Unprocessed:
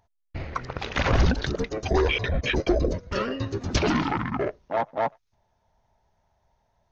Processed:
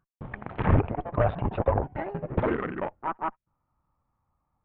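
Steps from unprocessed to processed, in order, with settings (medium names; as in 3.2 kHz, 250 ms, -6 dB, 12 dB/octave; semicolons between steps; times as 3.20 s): gliding tape speed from 167% -> 131%; Chebyshev shaper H 4 -19 dB, 7 -23 dB, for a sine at -9 dBFS; Gaussian low-pass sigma 4.9 samples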